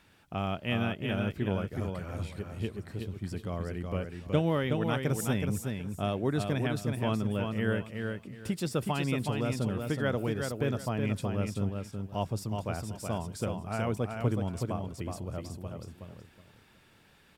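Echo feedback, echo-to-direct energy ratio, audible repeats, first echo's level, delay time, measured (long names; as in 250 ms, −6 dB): 23%, −5.0 dB, 3, −5.0 dB, 371 ms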